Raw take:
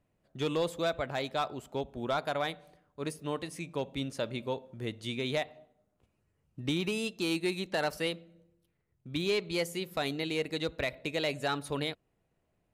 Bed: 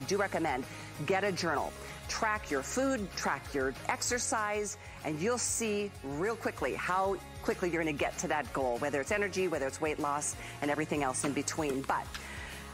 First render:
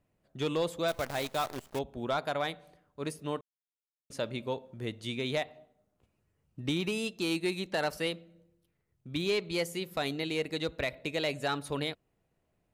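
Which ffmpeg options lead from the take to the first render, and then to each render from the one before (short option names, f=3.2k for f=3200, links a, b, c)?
-filter_complex "[0:a]asettb=1/sr,asplit=3[a][b][c];[a]atrim=end=0.884[d];[b]atrim=start=0.88:end=1.79,asetpts=PTS-STARTPTS,afade=t=in:d=0.004:c=qsin,afade=t=out:st=0.906:d=0.004:c=qsin,acrusher=bits=7:dc=4:mix=0:aa=0.000001[e];[c]atrim=start=1.786[f];[d][e]acrossfade=d=0.004:c1=hsin:c2=qsin[g];[g][f]acrossfade=d=0.004:c1=qsin:c2=hsin,asplit=3[h][i][j];[h]atrim=end=3.41,asetpts=PTS-STARTPTS,afade=t=out:st=3.406:d=0.004:c=hsin[k];[i]atrim=start=3.41:end=4.1,asetpts=PTS-STARTPTS,volume=0[l];[j]atrim=start=4.1,asetpts=PTS-STARTPTS,afade=t=in:d=0.004:c=hsin[m];[k][l][m]concat=n=3:v=0:a=1"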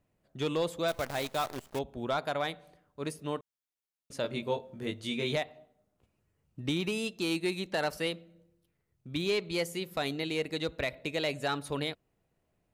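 -filter_complex "[0:a]asettb=1/sr,asplit=3[a][b][c];[a]atrim=end=4.224[d];[b]atrim=start=4.22:end=5.36,asetpts=PTS-STARTPTS,afade=t=in:d=0.004:c=qsin,afade=t=out:st=1.136:d=0.004:c=qsin,asplit=2[e][f];[f]adelay=21,volume=-2.5dB[g];[e][g]amix=inputs=2:normalize=0,atrim=end_sample=50274[h];[c]atrim=start=5.356[i];[d][h]acrossfade=d=0.004:c1=hsin:c2=qsin[j];[j][i]acrossfade=d=0.004:c1=qsin:c2=hsin"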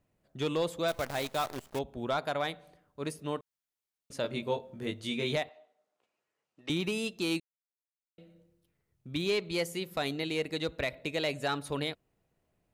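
-filter_complex "[0:a]asettb=1/sr,asplit=3[a][b][c];[a]atrim=end=5.494[d];[b]atrim=start=5.49:end=6.7,asetpts=PTS-STARTPTS,afade=t=in:d=0.004:c=qsin,afade=t=out:st=1.206:d=0.004:c=qsin,highpass=550,lowpass=7k[e];[c]atrim=start=6.696[f];[d][e]acrossfade=d=0.004:c1=hsin:c2=qsin[g];[g][f]acrossfade=d=0.004:c1=qsin:c2=hsin,asplit=3[h][i][j];[h]atrim=end=7.4,asetpts=PTS-STARTPTS,afade=t=out:st=7.396:d=0.004:c=hsin[k];[i]atrim=start=7.4:end=8.18,asetpts=PTS-STARTPTS,volume=0[l];[j]atrim=start=8.18,asetpts=PTS-STARTPTS,afade=t=in:d=0.004:c=hsin[m];[k][l][m]concat=n=3:v=0:a=1"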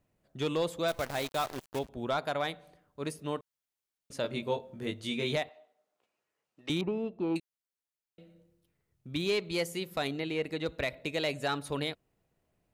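-filter_complex "[0:a]asettb=1/sr,asplit=3[a][b][c];[a]atrim=end=1.004[d];[b]atrim=start=1:end=1.89,asetpts=PTS-STARTPTS,afade=t=in:d=0.004:c=qsin,afade=t=out:st=0.886:d=0.004:c=qsin,aeval=exprs='val(0)*gte(abs(val(0)),0.00447)':c=same[e];[c]atrim=start=1.886[f];[d][e]acrossfade=d=0.004:c1=hsin:c2=qsin[g];[g][f]acrossfade=d=0.004:c1=qsin:c2=hsin,asettb=1/sr,asplit=3[h][i][j];[h]atrim=end=6.814[k];[i]atrim=start=6.81:end=7.36,asetpts=PTS-STARTPTS,afade=t=in:d=0.004:c=qsin,afade=t=out:st=0.546:d=0.004:c=qsin,lowpass=f=890:t=q:w=2.3[l];[j]atrim=start=7.356[m];[k][l]acrossfade=d=0.004:c1=hsin:c2=qsin[n];[n][m]acrossfade=d=0.004:c1=qsin:c2=hsin,asettb=1/sr,asplit=3[o][p][q];[o]atrim=end=10.074[r];[p]atrim=start=10.07:end=10.66,asetpts=PTS-STARTPTS,afade=t=in:d=0.004:c=qsin,afade=t=out:st=0.586:d=0.004:c=qsin,acrossover=split=3200[s][t];[t]acompressor=threshold=-51dB:ratio=4:attack=1:release=60[u];[s][u]amix=inputs=2:normalize=0[v];[q]atrim=start=10.656[w];[r][v]acrossfade=d=0.004:c1=hsin:c2=qsin[x];[x][w]acrossfade=d=0.004:c1=qsin:c2=hsin"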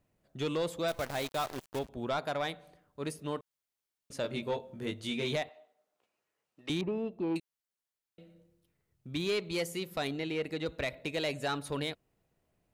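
-af "asoftclip=type=tanh:threshold=-24.5dB"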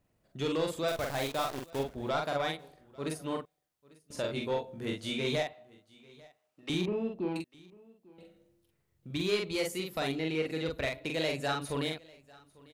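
-filter_complex "[0:a]asplit=2[a][b];[b]adelay=44,volume=-3dB[c];[a][c]amix=inputs=2:normalize=0,aecho=1:1:846:0.0631"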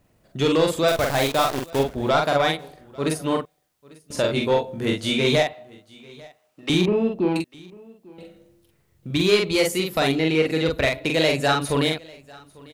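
-af "volume=12dB"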